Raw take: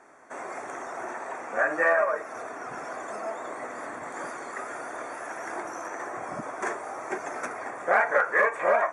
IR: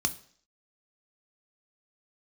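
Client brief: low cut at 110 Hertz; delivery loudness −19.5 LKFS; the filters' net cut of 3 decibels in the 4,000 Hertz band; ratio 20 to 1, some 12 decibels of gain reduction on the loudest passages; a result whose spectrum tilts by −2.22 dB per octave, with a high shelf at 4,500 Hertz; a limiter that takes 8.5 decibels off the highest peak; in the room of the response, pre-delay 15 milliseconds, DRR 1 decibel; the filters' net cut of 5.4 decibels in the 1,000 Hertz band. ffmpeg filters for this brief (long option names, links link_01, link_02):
-filter_complex "[0:a]highpass=110,equalizer=frequency=1000:width_type=o:gain=-7.5,equalizer=frequency=4000:width_type=o:gain=-6.5,highshelf=frequency=4500:gain=4,acompressor=threshold=-32dB:ratio=20,alimiter=level_in=5.5dB:limit=-24dB:level=0:latency=1,volume=-5.5dB,asplit=2[link_01][link_02];[1:a]atrim=start_sample=2205,adelay=15[link_03];[link_02][link_03]afir=irnorm=-1:irlink=0,volume=-7dB[link_04];[link_01][link_04]amix=inputs=2:normalize=0,volume=17.5dB"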